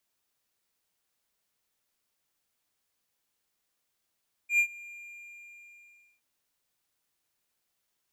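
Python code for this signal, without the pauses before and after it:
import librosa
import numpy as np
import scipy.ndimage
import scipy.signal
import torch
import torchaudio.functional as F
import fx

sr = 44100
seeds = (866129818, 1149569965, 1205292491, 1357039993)

y = fx.adsr_tone(sr, wave='triangle', hz=2400.0, attack_ms=100.0, decay_ms=79.0, sustain_db=-23.5, held_s=0.42, release_ms=1300.0, level_db=-17.0)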